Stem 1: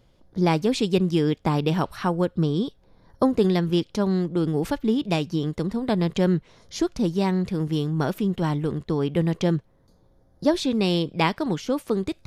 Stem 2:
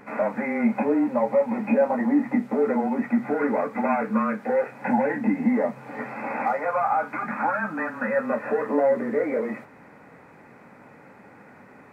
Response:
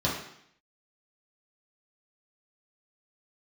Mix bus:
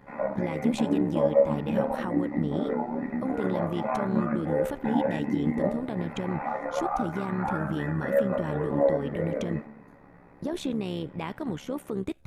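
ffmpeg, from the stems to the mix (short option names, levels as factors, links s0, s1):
-filter_complex "[0:a]equalizer=f=4800:w=1.9:g=-13,alimiter=limit=0.106:level=0:latency=1:release=69,volume=0.944[s0];[1:a]flanger=delay=16.5:depth=3.4:speed=0.18,highshelf=f=3100:g=-10,volume=0.708,asplit=2[s1][s2];[s2]volume=0.266[s3];[2:a]atrim=start_sample=2205[s4];[s3][s4]afir=irnorm=-1:irlink=0[s5];[s0][s1][s5]amix=inputs=3:normalize=0,tremolo=f=70:d=0.621"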